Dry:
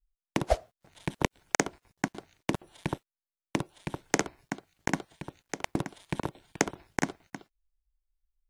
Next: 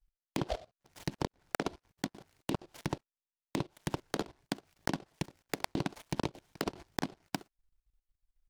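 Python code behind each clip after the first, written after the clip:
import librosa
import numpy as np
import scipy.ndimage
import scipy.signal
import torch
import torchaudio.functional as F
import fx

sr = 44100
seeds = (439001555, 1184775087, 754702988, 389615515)

y = fx.env_lowpass_down(x, sr, base_hz=1500.0, full_db=-29.0)
y = fx.level_steps(y, sr, step_db=19)
y = fx.noise_mod_delay(y, sr, seeds[0], noise_hz=3000.0, depth_ms=0.068)
y = y * 10.0 ** (6.0 / 20.0)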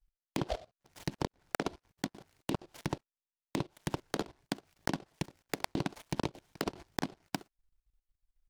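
y = x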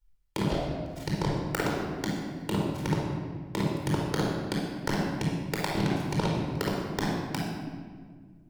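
y = fx.room_shoebox(x, sr, seeds[1], volume_m3=2200.0, walls='mixed', distance_m=4.5)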